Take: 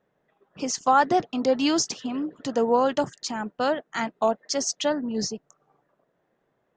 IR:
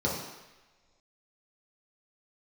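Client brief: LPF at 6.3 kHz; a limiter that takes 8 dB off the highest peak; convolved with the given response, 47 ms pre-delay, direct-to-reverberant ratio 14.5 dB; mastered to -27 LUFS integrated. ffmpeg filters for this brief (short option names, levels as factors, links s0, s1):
-filter_complex "[0:a]lowpass=6300,alimiter=limit=0.168:level=0:latency=1,asplit=2[s0][s1];[1:a]atrim=start_sample=2205,adelay=47[s2];[s1][s2]afir=irnorm=-1:irlink=0,volume=0.0596[s3];[s0][s3]amix=inputs=2:normalize=0"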